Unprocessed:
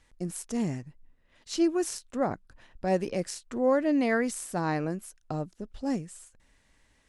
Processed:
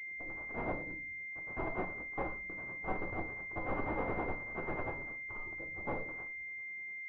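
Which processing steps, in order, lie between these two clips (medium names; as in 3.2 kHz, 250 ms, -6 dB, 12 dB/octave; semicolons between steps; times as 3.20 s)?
gate with hold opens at -54 dBFS; spectral gate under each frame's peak -15 dB weak; peaking EQ 770 Hz -8 dB 0.29 oct; in parallel at +1.5 dB: peak limiter -34 dBFS, peak gain reduction 7 dB; on the sum: level held to a coarse grid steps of 20 dB; integer overflow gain 37.5 dB; valve stage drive 42 dB, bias 0.55; tremolo 10 Hz, depth 71%; reverberation RT60 0.40 s, pre-delay 3 ms, DRR 2 dB; class-D stage that switches slowly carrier 2.1 kHz; trim +16 dB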